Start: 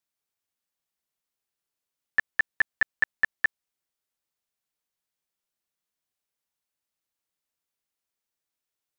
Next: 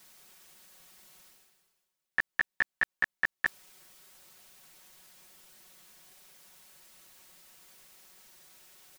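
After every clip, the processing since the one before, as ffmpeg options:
ffmpeg -i in.wav -af "aecho=1:1:5.4:0.97,areverse,acompressor=mode=upward:threshold=-30dB:ratio=2.5,areverse,volume=-3dB" out.wav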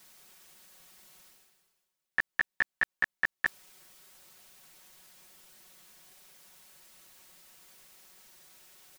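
ffmpeg -i in.wav -af anull out.wav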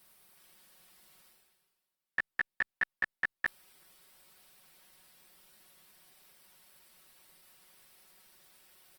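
ffmpeg -i in.wav -af "equalizer=frequency=6700:width=4.3:gain=-10,volume=-3.5dB" -ar 48000 -c:a libopus -b:a 24k out.opus

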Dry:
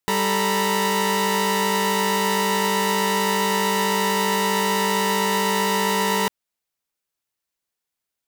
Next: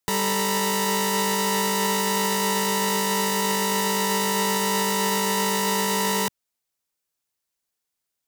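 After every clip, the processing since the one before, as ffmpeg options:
ffmpeg -i in.wav -filter_complex "[0:a]highshelf=frequency=3700:gain=-7,acrossover=split=160|5000[link_01][link_02][link_03];[link_02]alimiter=limit=-17dB:level=0:latency=1:release=14[link_04];[link_01][link_04][link_03]amix=inputs=3:normalize=0,bass=frequency=250:gain=0,treble=frequency=4000:gain=9" out.wav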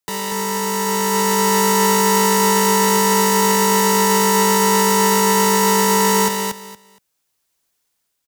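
ffmpeg -i in.wav -filter_complex "[0:a]acrossover=split=180[link_01][link_02];[link_01]asoftclip=type=tanh:threshold=-35dB[link_03];[link_03][link_02]amix=inputs=2:normalize=0,aecho=1:1:234|468|702:0.562|0.107|0.0203,dynaudnorm=framelen=210:gausssize=11:maxgain=14dB,volume=-1dB" out.wav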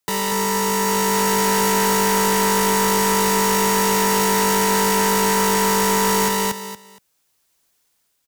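ffmpeg -i in.wav -af "asoftclip=type=tanh:threshold=-20dB,volume=4.5dB" out.wav

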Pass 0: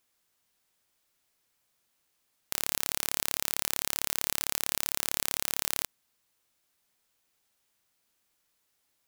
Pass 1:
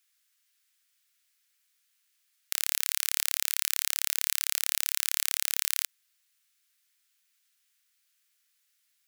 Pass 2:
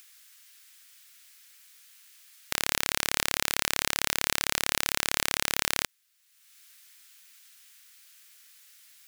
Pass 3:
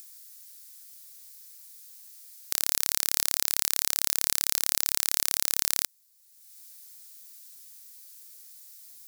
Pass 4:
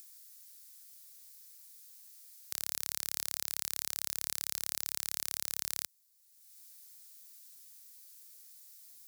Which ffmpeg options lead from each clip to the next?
ffmpeg -i in.wav -af "highpass=frequency=1500:width=0.5412,highpass=frequency=1500:width=1.3066,volume=2.5dB" out.wav
ffmpeg -i in.wav -filter_complex "[0:a]asplit=2[link_01][link_02];[link_02]acompressor=mode=upward:threshold=-36dB:ratio=2.5,volume=2dB[link_03];[link_01][link_03]amix=inputs=2:normalize=0,aeval=exprs='(tanh(1.78*val(0)+0.8)-tanh(0.8))/1.78':channel_layout=same" out.wav
ffmpeg -i in.wav -af "aexciter=amount=4.8:drive=3.1:freq=4100,volume=-8.5dB" out.wav
ffmpeg -i in.wav -af "highpass=57,alimiter=limit=-5.5dB:level=0:latency=1:release=37,volume=-6dB" out.wav

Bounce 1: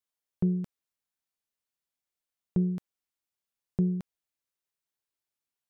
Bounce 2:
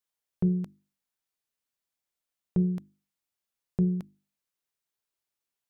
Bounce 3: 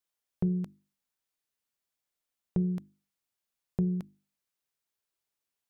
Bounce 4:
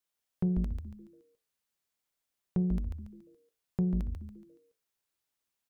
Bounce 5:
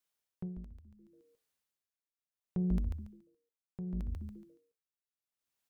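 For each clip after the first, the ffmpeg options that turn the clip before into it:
ffmpeg -i in.wav -af "bandreject=frequency=50:width_type=h:width=6,bandreject=frequency=100:width_type=h:width=6,bandreject=frequency=150:width_type=h:width=6,bandreject=frequency=200:width_type=h:width=6,bandreject=frequency=250:width_type=h:width=6,bandreject=frequency=300:width_type=h:width=6,bandreject=frequency=350:width_type=h:width=6,volume=1.5dB" out.wav
ffmpeg -i in.wav -af "acompressor=threshold=-26dB:ratio=2.5" out.wav
ffmpeg -i in.wav -filter_complex "[0:a]asoftclip=type=tanh:threshold=-18.5dB,asplit=6[link_01][link_02][link_03][link_04][link_05][link_06];[link_02]adelay=141,afreqshift=-130,volume=-4dB[link_07];[link_03]adelay=282,afreqshift=-260,volume=-12.6dB[link_08];[link_04]adelay=423,afreqshift=-390,volume=-21.3dB[link_09];[link_05]adelay=564,afreqshift=-520,volume=-29.9dB[link_10];[link_06]adelay=705,afreqshift=-650,volume=-38.5dB[link_11];[link_01][link_07][link_08][link_09][link_10][link_11]amix=inputs=6:normalize=0" out.wav
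ffmpeg -i in.wav -af "aeval=exprs='val(0)*pow(10,-18*(0.5-0.5*cos(2*PI*0.7*n/s))/20)':channel_layout=same,volume=1dB" out.wav

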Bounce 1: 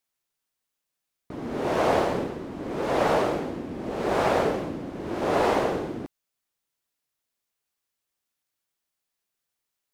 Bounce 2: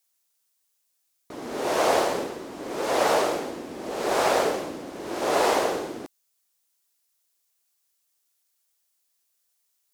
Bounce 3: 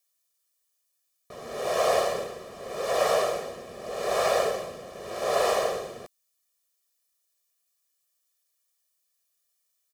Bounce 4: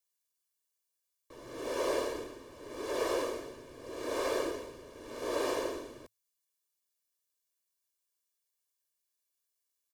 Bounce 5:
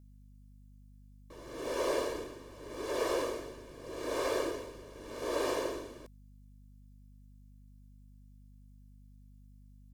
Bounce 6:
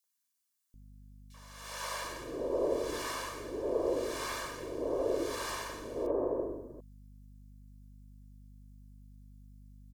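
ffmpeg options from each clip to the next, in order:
ffmpeg -i in.wav -af "bass=frequency=250:gain=-13,treble=frequency=4000:gain=10,volume=1.5dB" out.wav
ffmpeg -i in.wav -af "aecho=1:1:1.7:0.95,volume=-5.5dB" out.wav
ffmpeg -i in.wav -af "afreqshift=-110,volume=-8.5dB" out.wav
ffmpeg -i in.wav -af "aeval=exprs='val(0)+0.00178*(sin(2*PI*50*n/s)+sin(2*PI*2*50*n/s)/2+sin(2*PI*3*50*n/s)/3+sin(2*PI*4*50*n/s)/4+sin(2*PI*5*50*n/s)/5)':channel_layout=same" out.wav
ffmpeg -i in.wav -filter_complex "[0:a]acrossover=split=850|2700[link_01][link_02][link_03];[link_02]adelay=40[link_04];[link_01]adelay=740[link_05];[link_05][link_04][link_03]amix=inputs=3:normalize=0,volume=2.5dB" out.wav

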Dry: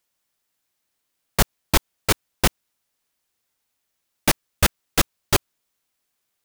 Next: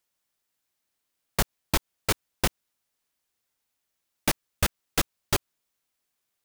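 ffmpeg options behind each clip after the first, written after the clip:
ffmpeg -i in.wav -af "acompressor=threshold=-15dB:ratio=6,volume=-4dB" out.wav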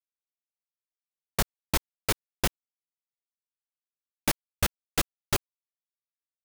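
ffmpeg -i in.wav -af "acrusher=bits=5:dc=4:mix=0:aa=0.000001,volume=-2dB" out.wav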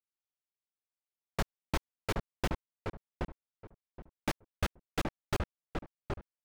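ffmpeg -i in.wav -filter_complex "[0:a]aemphasis=mode=reproduction:type=75kf,asplit=2[link_01][link_02];[link_02]adelay=773,lowpass=frequency=1200:poles=1,volume=-3dB,asplit=2[link_03][link_04];[link_04]adelay=773,lowpass=frequency=1200:poles=1,volume=0.22,asplit=2[link_05][link_06];[link_06]adelay=773,lowpass=frequency=1200:poles=1,volume=0.22[link_07];[link_01][link_03][link_05][link_07]amix=inputs=4:normalize=0,volume=-4dB" out.wav

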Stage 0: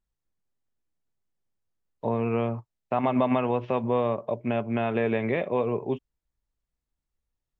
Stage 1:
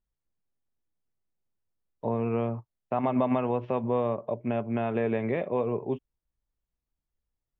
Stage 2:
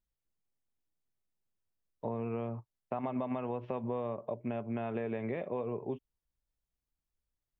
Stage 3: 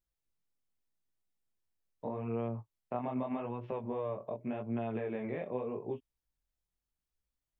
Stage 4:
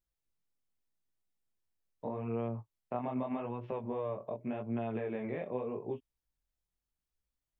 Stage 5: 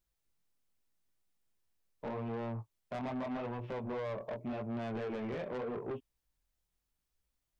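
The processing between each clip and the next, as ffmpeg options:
ffmpeg -i in.wav -af "highshelf=frequency=2200:gain=-9,volume=-1.5dB" out.wav
ffmpeg -i in.wav -af "acompressor=threshold=-29dB:ratio=4,volume=-3.5dB" out.wav
ffmpeg -i in.wav -af "flanger=delay=17:depth=7.7:speed=0.83,volume=1.5dB" out.wav
ffmpeg -i in.wav -af anull out.wav
ffmpeg -i in.wav -af "asoftclip=type=tanh:threshold=-39.5dB,volume=4.5dB" out.wav

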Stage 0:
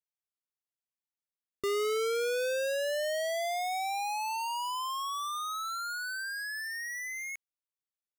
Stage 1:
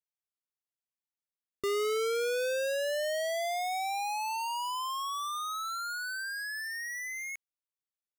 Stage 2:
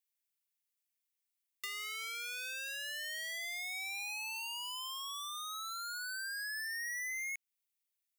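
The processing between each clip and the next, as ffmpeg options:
ffmpeg -i in.wav -af anull out.wav
ffmpeg -i in.wav -filter_complex "[0:a]crystalizer=i=2:c=0,highpass=frequency=2100:width_type=q:width=1.9,acrossover=split=3000|7600[link_01][link_02][link_03];[link_01]acompressor=threshold=-38dB:ratio=4[link_04];[link_02]acompressor=threshold=-46dB:ratio=4[link_05];[link_03]acompressor=threshold=-47dB:ratio=4[link_06];[link_04][link_05][link_06]amix=inputs=3:normalize=0,volume=-3dB" out.wav

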